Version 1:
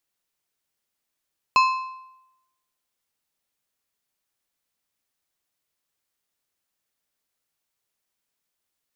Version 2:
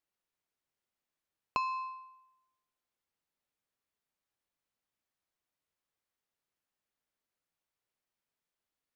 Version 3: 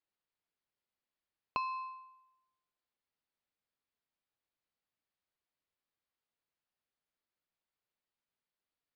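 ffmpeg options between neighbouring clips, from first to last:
ffmpeg -i in.wav -af "acompressor=threshold=-24dB:ratio=6,highshelf=frequency=3600:gain=-10,volume=-4.5dB" out.wav
ffmpeg -i in.wav -af "aresample=11025,aresample=44100,volume=-3dB" out.wav

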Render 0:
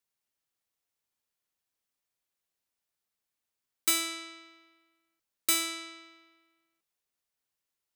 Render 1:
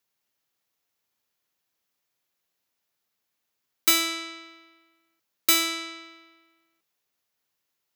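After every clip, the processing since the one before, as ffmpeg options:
ffmpeg -i in.wav -af "highpass=89,equalizer=frequency=8800:width_type=o:width=0.29:gain=-9.5,volume=7.5dB" out.wav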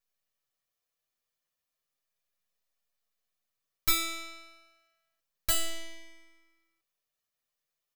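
ffmpeg -i in.wav -filter_complex "[0:a]aeval=exprs='max(val(0),0)':channel_layout=same,aecho=1:1:1.7:0.36,asplit=2[link_01][link_02];[link_02]adelay=6.6,afreqshift=0.31[link_03];[link_01][link_03]amix=inputs=2:normalize=1" out.wav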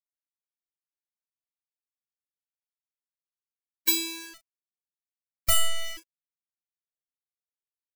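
ffmpeg -i in.wav -filter_complex "[0:a]aeval=exprs='val(0)*gte(abs(val(0)),0.01)':channel_layout=same,asplit=2[link_01][link_02];[link_02]adelay=31,volume=-9dB[link_03];[link_01][link_03]amix=inputs=2:normalize=0,afftfilt=real='re*gt(sin(2*PI*0.92*pts/sr)*(1-2*mod(floor(b*sr/1024/290),2)),0)':imag='im*gt(sin(2*PI*0.92*pts/sr)*(1-2*mod(floor(b*sr/1024/290),2)),0)':win_size=1024:overlap=0.75,volume=7dB" out.wav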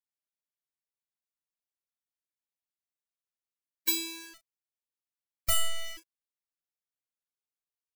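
ffmpeg -i in.wav -af "acrusher=bits=8:mode=log:mix=0:aa=0.000001,volume=-4.5dB" out.wav

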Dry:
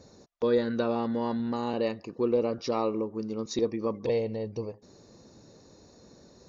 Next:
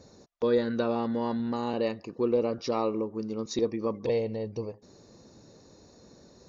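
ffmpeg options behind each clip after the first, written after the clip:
ffmpeg -i in.wav -af anull out.wav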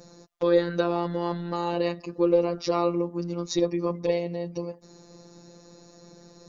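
ffmpeg -i in.wav -af "afftfilt=real='hypot(re,im)*cos(PI*b)':imag='0':win_size=1024:overlap=0.75,volume=7.5dB" out.wav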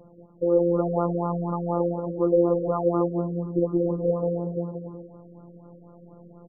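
ffmpeg -i in.wav -af "aecho=1:1:180|297|373|422.5|454.6:0.631|0.398|0.251|0.158|0.1,afftfilt=real='re*lt(b*sr/1024,600*pow(1500/600,0.5+0.5*sin(2*PI*4.1*pts/sr)))':imag='im*lt(b*sr/1024,600*pow(1500/600,0.5+0.5*sin(2*PI*4.1*pts/sr)))':win_size=1024:overlap=0.75" out.wav

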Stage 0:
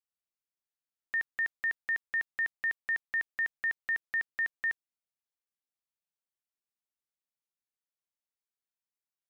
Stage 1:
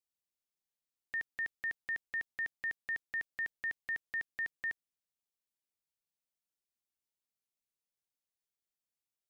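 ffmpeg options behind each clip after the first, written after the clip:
ffmpeg -i in.wav -af "equalizer=frequency=1300:width_type=o:width=1.6:gain=-8" out.wav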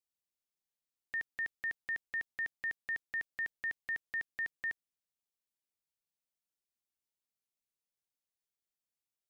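ffmpeg -i in.wav -af anull out.wav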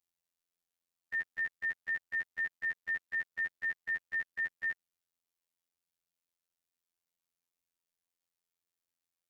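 ffmpeg -i in.wav -af "afftfilt=real='hypot(re,im)*cos(PI*b)':imag='0':win_size=2048:overlap=0.75,volume=4.5dB" out.wav

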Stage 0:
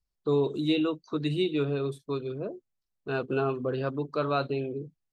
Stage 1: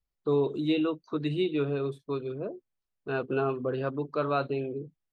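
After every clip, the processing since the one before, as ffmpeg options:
ffmpeg -i in.wav -af "bass=frequency=250:gain=-2,treble=frequency=4000:gain=-10" out.wav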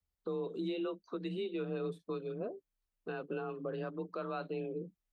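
ffmpeg -i in.wav -af "alimiter=level_in=3dB:limit=-24dB:level=0:latency=1:release=379,volume=-3dB,afreqshift=30,volume=-2.5dB" out.wav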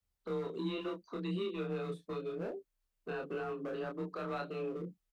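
ffmpeg -i in.wav -filter_complex "[0:a]acrossover=split=240|1300[link_01][link_02][link_03];[link_02]asoftclip=type=hard:threshold=-39.5dB[link_04];[link_01][link_04][link_03]amix=inputs=3:normalize=0,asplit=2[link_05][link_06];[link_06]adelay=28,volume=-2.5dB[link_07];[link_05][link_07]amix=inputs=2:normalize=0" out.wav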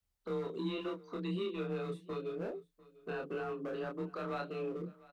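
ffmpeg -i in.wav -af "aecho=1:1:697:0.0841" out.wav

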